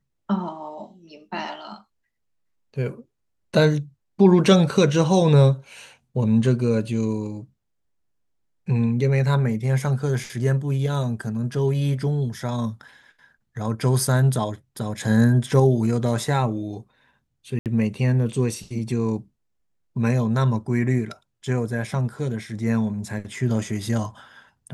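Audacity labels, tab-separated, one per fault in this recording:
17.590000	17.660000	gap 68 ms

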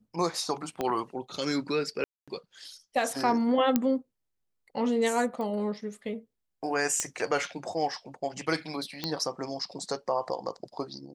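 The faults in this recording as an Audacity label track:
0.810000	0.810000	pop -16 dBFS
2.040000	2.280000	gap 0.236 s
3.760000	3.760000	pop -10 dBFS
5.410000	5.410000	pop -25 dBFS
7.000000	7.000000	pop -13 dBFS
9.040000	9.040000	pop -15 dBFS

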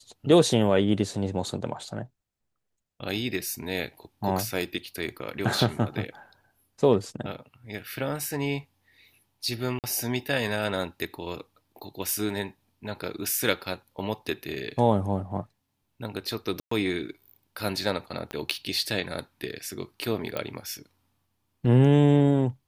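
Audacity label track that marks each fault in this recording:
9.790000	9.840000	gap 48 ms
16.600000	16.710000	gap 0.114 s
18.310000	18.310000	pop -19 dBFS
20.370000	20.370000	pop -15 dBFS

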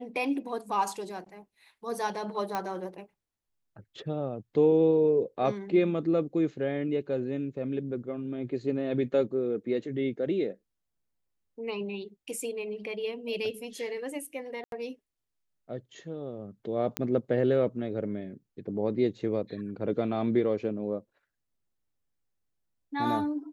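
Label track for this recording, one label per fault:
2.550000	2.550000	pop -17 dBFS
14.640000	14.720000	gap 82 ms
16.970000	16.970000	pop -12 dBFS

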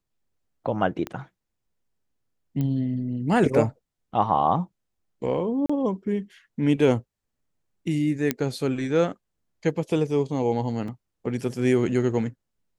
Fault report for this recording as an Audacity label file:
1.070000	1.070000	pop -17 dBFS
2.610000	2.610000	pop -17 dBFS
5.660000	5.700000	gap 35 ms
8.310000	8.310000	pop -8 dBFS
10.880000	10.880000	gap 3.1 ms

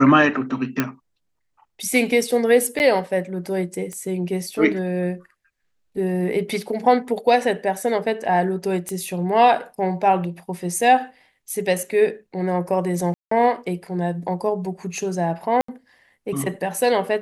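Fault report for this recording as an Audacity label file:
0.800000	0.800000	pop -6 dBFS
2.790000	2.800000	gap 9.8 ms
3.930000	3.930000	pop -21 dBFS
8.890000	8.890000	pop -15 dBFS
13.140000	13.310000	gap 0.174 s
15.610000	15.680000	gap 74 ms

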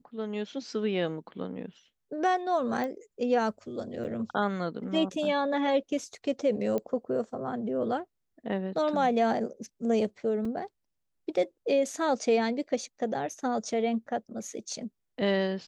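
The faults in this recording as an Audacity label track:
2.840000	2.840000	pop -22 dBFS
4.040000	4.050000	gap 7.9 ms
6.780000	6.780000	pop -20 dBFS
10.450000	10.450000	gap 3.4 ms

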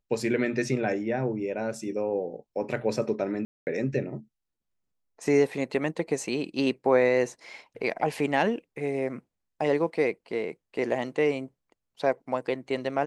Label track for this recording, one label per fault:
3.450000	3.670000	gap 0.219 s

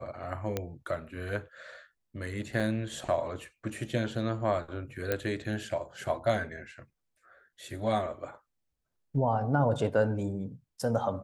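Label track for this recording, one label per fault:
0.570000	0.570000	pop -16 dBFS
2.600000	2.600000	gap 3.5 ms
5.120000	5.120000	pop -14 dBFS

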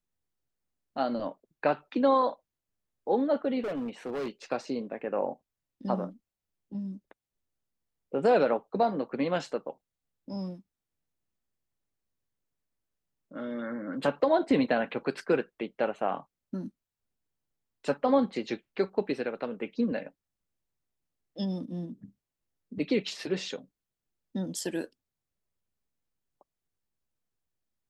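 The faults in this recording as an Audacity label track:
3.600000	4.290000	clipped -30 dBFS

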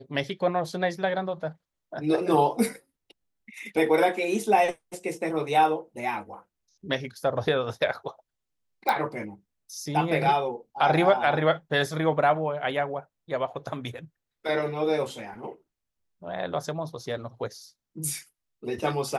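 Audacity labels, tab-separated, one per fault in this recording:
8.890000	8.890000	pop -12 dBFS

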